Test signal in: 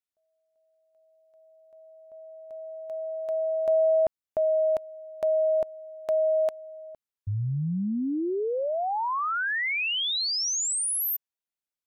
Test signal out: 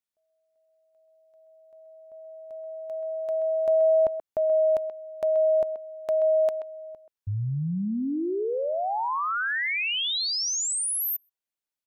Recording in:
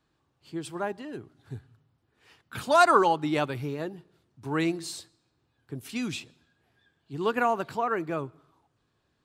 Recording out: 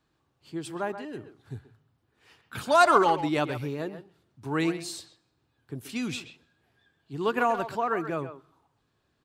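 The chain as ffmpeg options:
-filter_complex "[0:a]asplit=2[s0][s1];[s1]adelay=130,highpass=300,lowpass=3400,asoftclip=type=hard:threshold=0.126,volume=0.316[s2];[s0][s2]amix=inputs=2:normalize=0"

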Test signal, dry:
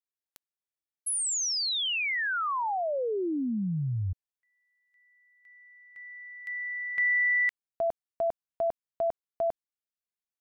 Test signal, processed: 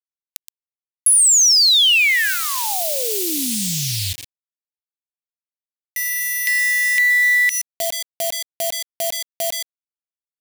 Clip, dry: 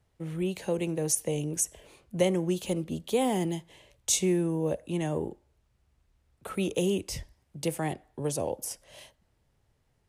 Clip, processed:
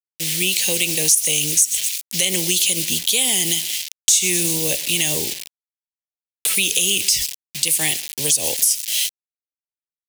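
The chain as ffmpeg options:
-af "aecho=1:1:122|244|366:0.0668|0.0354|0.0188,acontrast=88,aeval=exprs='0.531*(cos(1*acos(clip(val(0)/0.531,-1,1)))-cos(1*PI/2))+0.00841*(cos(5*acos(clip(val(0)/0.531,-1,1)))-cos(5*PI/2))':c=same,acrusher=bits=6:mix=0:aa=0.000001,aexciter=amount=15.3:drive=7.6:freq=2100,acompressor=threshold=0.355:ratio=4:attack=4.9:release=84:knee=1:detection=rms,alimiter=level_in=0.596:limit=0.891:release=50:level=0:latency=1,volume=0.891"

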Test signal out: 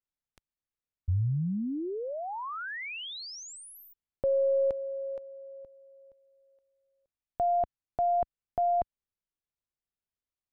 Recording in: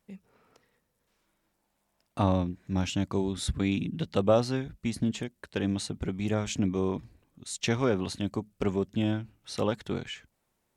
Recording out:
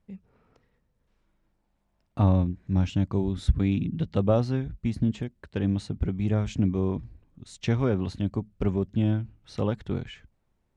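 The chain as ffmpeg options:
-af "aeval=exprs='0.299*(cos(1*acos(clip(val(0)/0.299,-1,1)))-cos(1*PI/2))+0.00376*(cos(2*acos(clip(val(0)/0.299,-1,1)))-cos(2*PI/2))':c=same,aemphasis=mode=reproduction:type=bsi,volume=0.75"

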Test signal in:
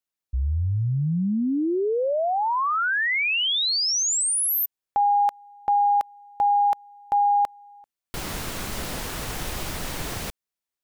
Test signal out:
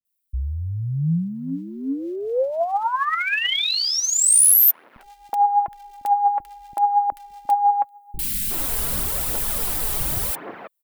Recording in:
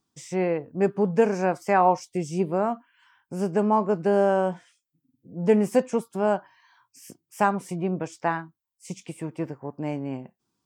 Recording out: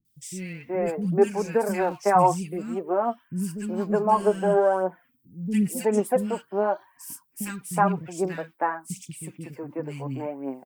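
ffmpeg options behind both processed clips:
-filter_complex "[0:a]aexciter=amount=1.9:drive=9.5:freq=8400,aphaser=in_gain=1:out_gain=1:delay=5:decay=0.51:speed=0.89:type=triangular,acrossover=split=250|2000[s0][s1][s2];[s2]adelay=50[s3];[s1]adelay=370[s4];[s0][s4][s3]amix=inputs=3:normalize=0"

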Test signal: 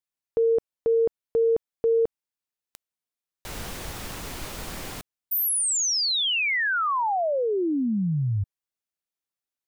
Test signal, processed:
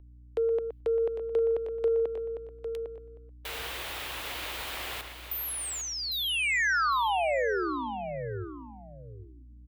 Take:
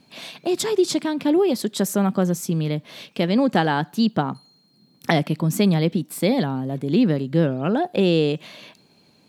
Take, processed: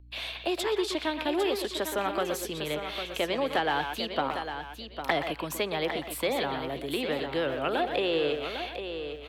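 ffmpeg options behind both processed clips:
-filter_complex "[0:a]acrossover=split=240|4900[s0][s1][s2];[s1]acontrast=70[s3];[s0][s3][s2]amix=inputs=3:normalize=0,asplit=2[s4][s5];[s5]adelay=120,highpass=300,lowpass=3400,asoftclip=type=hard:threshold=0.282,volume=0.398[s6];[s4][s6]amix=inputs=2:normalize=0,agate=range=0.0224:threshold=0.01:ratio=3:release=85:detection=rms,highpass=53,aeval=exprs='val(0)+0.0112*(sin(2*PI*60*n/s)+sin(2*PI*2*60*n/s)/2+sin(2*PI*3*60*n/s)/3+sin(2*PI*4*60*n/s)/4+sin(2*PI*5*60*n/s)/5)':c=same,highshelf=f=4300:t=q:w=1.5:g=-8.5,crystalizer=i=4:c=0,acrossover=split=450|1700[s7][s8][s9];[s7]acompressor=threshold=0.112:ratio=4[s10];[s8]acompressor=threshold=0.141:ratio=4[s11];[s9]acompressor=threshold=0.0447:ratio=4[s12];[s10][s11][s12]amix=inputs=3:normalize=0,equalizer=f=190:w=1.3:g=-14.5,asplit=2[s13][s14];[s14]aecho=0:1:803|1606:0.376|0.0601[s15];[s13][s15]amix=inputs=2:normalize=0,volume=0.376"

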